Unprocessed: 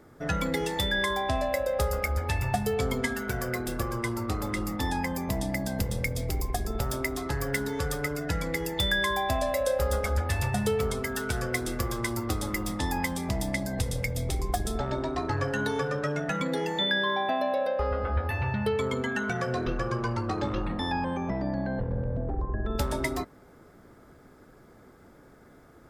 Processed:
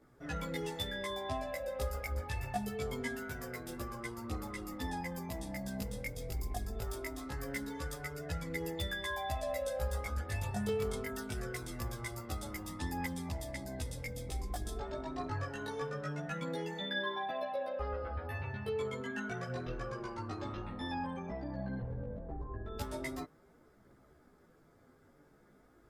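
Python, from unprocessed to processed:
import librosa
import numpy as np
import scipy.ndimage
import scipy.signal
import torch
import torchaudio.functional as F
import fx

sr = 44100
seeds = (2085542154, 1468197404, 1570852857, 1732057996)

y = fx.chorus_voices(x, sr, voices=2, hz=0.23, base_ms=16, depth_ms=4.2, mix_pct=55)
y = F.gain(torch.from_numpy(y), -7.5).numpy()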